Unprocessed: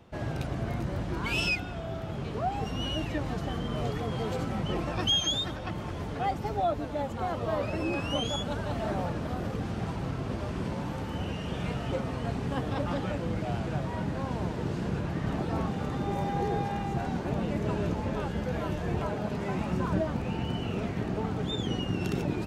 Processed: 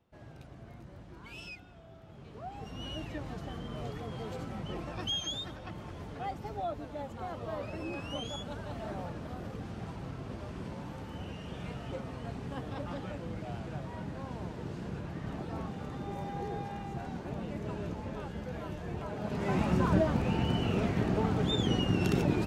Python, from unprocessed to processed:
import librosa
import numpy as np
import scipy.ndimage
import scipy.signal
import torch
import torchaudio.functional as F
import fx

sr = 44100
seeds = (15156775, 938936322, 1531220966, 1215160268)

y = fx.gain(x, sr, db=fx.line((2.02, -17.5), (2.91, -8.0), (19.05, -8.0), (19.55, 2.0)))